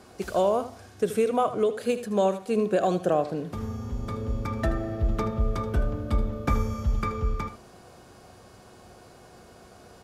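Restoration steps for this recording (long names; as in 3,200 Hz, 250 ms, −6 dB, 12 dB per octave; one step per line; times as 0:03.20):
hum removal 364.7 Hz, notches 20
echo removal 78 ms −12.5 dB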